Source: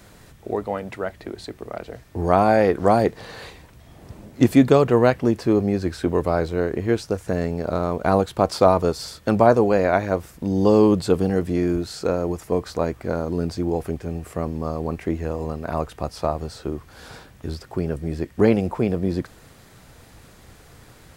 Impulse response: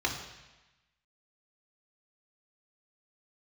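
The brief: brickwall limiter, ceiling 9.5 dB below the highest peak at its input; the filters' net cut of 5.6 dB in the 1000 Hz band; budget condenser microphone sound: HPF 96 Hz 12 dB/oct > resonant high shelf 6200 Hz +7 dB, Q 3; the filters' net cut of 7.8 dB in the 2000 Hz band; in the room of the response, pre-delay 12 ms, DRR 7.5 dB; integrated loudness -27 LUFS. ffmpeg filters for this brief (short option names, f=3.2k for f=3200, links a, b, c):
-filter_complex "[0:a]equalizer=f=1k:t=o:g=-7,equalizer=f=2k:t=o:g=-7,alimiter=limit=-13dB:level=0:latency=1,asplit=2[a][b];[1:a]atrim=start_sample=2205,adelay=12[c];[b][c]afir=irnorm=-1:irlink=0,volume=-16dB[d];[a][d]amix=inputs=2:normalize=0,highpass=96,highshelf=f=6.2k:t=q:w=3:g=7,volume=-1dB"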